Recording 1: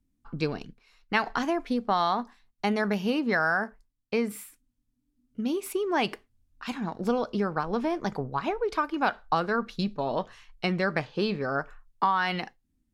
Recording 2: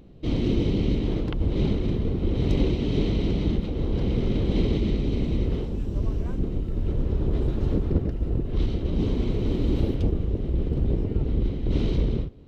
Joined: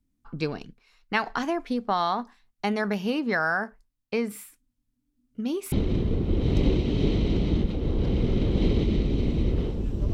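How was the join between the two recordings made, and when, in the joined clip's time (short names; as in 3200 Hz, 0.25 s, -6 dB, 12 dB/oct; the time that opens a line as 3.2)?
recording 1
5.72 switch to recording 2 from 1.66 s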